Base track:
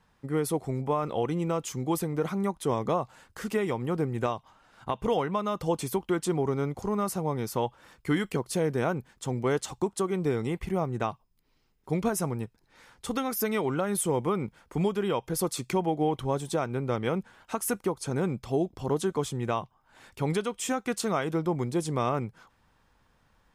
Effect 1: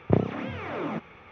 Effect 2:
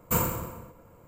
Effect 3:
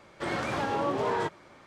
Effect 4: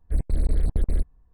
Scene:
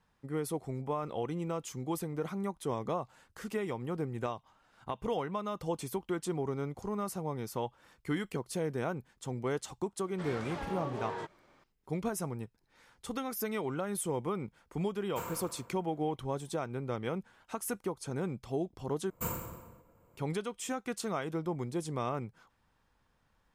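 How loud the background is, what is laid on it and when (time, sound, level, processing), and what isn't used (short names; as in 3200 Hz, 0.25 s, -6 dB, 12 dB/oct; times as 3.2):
base track -7 dB
9.98 add 3 -10.5 dB
15.05 add 2 -16.5 dB + overdrive pedal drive 15 dB, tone 3000 Hz, clips at -10.5 dBFS
19.1 replace with 2 -10.5 dB
not used: 1, 4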